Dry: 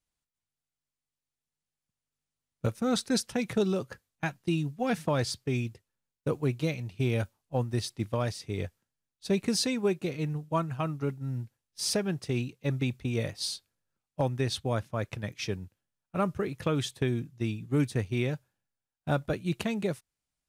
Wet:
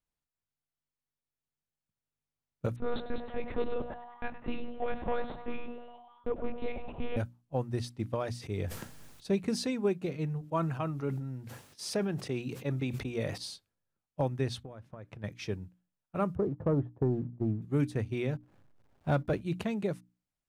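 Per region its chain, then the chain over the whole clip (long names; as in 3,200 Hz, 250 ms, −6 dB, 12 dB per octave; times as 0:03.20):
0:02.76–0:07.17: hard clipping −22.5 dBFS + echo with shifted repeats 102 ms, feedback 63%, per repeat +140 Hz, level −12 dB + one-pitch LPC vocoder at 8 kHz 240 Hz
0:08.31–0:09.26: high-shelf EQ 5,400 Hz +3.5 dB + level that may fall only so fast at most 23 dB per second
0:10.41–0:13.38: high-pass filter 170 Hz 6 dB per octave + level that may fall only so fast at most 42 dB per second
0:14.63–0:15.24: high-shelf EQ 3,400 Hz −8 dB + downward compressor 16 to 1, threshold −38 dBFS
0:16.35–0:17.62: low-pass filter 1,000 Hz 24 dB per octave + leveller curve on the samples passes 1
0:18.35–0:19.41: upward compression, threshold −37 dBFS + leveller curve on the samples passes 1 + slack as between gear wheels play −53.5 dBFS
whole clip: high-shelf EQ 2,300 Hz −8.5 dB; mains-hum notches 60/120/180/240/300 Hz; level −1.5 dB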